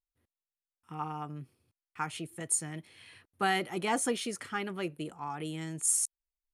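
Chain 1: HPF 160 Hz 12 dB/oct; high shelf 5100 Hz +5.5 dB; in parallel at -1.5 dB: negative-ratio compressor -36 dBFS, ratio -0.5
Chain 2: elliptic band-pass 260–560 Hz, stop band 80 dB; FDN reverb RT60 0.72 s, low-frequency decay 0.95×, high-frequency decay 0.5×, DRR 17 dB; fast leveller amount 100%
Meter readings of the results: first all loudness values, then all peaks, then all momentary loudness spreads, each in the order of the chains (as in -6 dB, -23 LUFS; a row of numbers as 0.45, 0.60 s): -29.0, -30.0 LUFS; -11.0, -17.0 dBFS; 15, 8 LU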